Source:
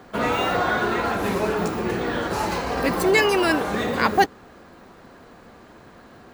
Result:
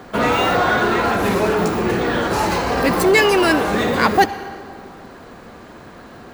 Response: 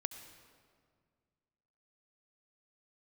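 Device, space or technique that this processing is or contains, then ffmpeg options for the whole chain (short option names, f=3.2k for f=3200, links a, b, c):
saturated reverb return: -filter_complex "[0:a]asplit=2[a][b];[1:a]atrim=start_sample=2205[c];[b][c]afir=irnorm=-1:irlink=0,asoftclip=type=tanh:threshold=-23.5dB,volume=1dB[d];[a][d]amix=inputs=2:normalize=0,volume=1.5dB"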